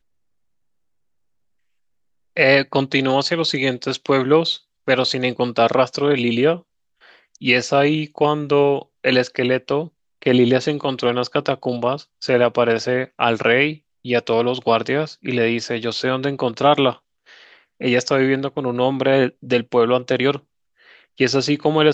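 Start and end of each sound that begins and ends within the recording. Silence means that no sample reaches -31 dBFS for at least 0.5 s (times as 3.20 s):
2.37–6.58 s
7.35–16.93 s
17.81–20.38 s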